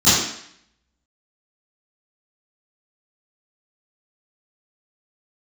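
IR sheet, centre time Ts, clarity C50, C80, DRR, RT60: 70 ms, -0.5 dB, 3.0 dB, -17.0 dB, 0.65 s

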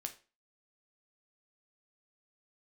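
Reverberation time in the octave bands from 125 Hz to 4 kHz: 0.30, 0.35, 0.35, 0.35, 0.35, 0.30 s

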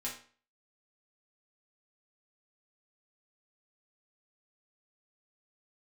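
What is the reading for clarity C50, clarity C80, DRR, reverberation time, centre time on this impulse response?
7.0 dB, 11.5 dB, -5.0 dB, 0.45 s, 27 ms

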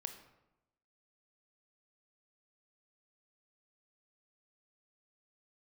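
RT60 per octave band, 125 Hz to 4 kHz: 1.0, 1.0, 0.95, 0.90, 0.75, 0.55 s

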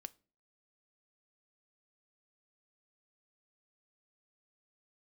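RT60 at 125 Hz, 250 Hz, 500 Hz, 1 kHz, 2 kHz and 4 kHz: 0.45, 0.50, 0.45, 0.35, 0.30, 0.30 s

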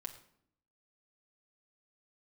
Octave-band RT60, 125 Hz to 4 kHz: 0.90, 1.0, 0.70, 0.65, 0.55, 0.50 s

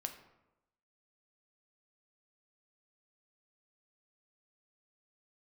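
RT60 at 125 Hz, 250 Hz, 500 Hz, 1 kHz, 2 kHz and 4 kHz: 0.95, 0.95, 1.0, 0.95, 0.75, 0.55 s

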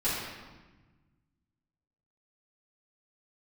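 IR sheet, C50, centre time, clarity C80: -1.0 dB, 91 ms, 1.5 dB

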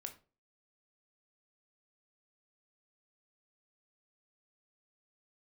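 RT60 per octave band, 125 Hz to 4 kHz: 0.40, 0.40, 0.40, 0.30, 0.25, 0.25 s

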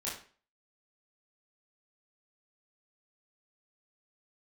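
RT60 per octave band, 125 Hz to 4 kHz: 0.40, 0.40, 0.45, 0.40, 0.40, 0.35 s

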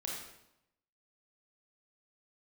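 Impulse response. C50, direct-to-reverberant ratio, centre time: 1.0 dB, -3.0 dB, 58 ms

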